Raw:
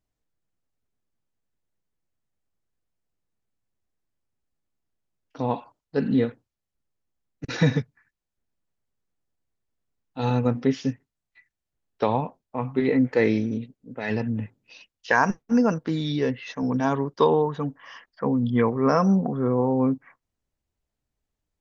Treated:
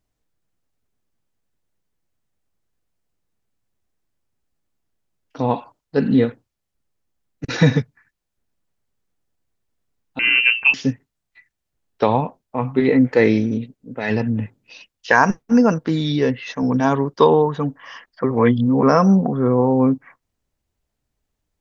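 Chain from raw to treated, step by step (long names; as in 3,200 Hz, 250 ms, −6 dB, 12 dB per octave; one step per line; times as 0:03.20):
0:10.19–0:10.74: voice inversion scrambler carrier 2,900 Hz
0:18.24–0:18.83: reverse
level +6 dB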